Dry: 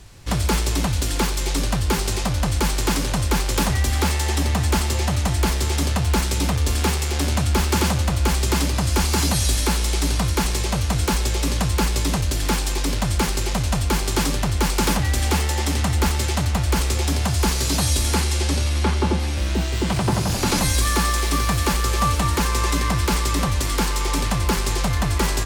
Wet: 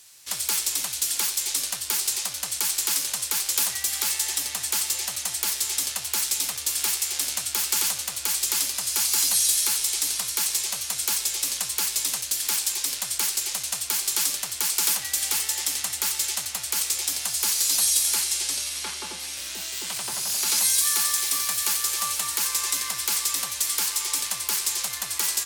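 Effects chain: differentiator; gain +4.5 dB

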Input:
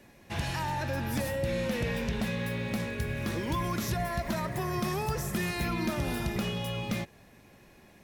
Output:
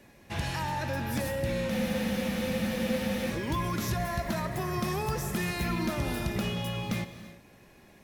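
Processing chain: non-linear reverb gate 0.37 s flat, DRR 10 dB; spectral freeze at 1.72, 1.58 s

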